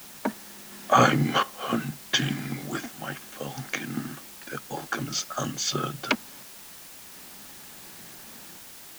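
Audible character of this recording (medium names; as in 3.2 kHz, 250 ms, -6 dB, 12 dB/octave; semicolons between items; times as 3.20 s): random-step tremolo 1.4 Hz, depth 70%; a quantiser's noise floor 8-bit, dither triangular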